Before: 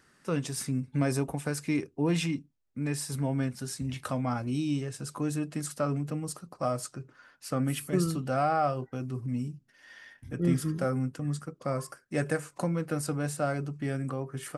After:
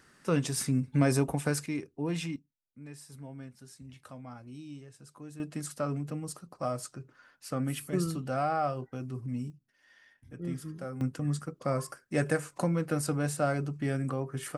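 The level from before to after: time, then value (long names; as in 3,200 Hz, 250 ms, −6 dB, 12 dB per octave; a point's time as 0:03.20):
+2.5 dB
from 0:01.66 −5.5 dB
from 0:02.36 −15 dB
from 0:05.40 −3 dB
from 0:09.50 −10 dB
from 0:11.01 +1 dB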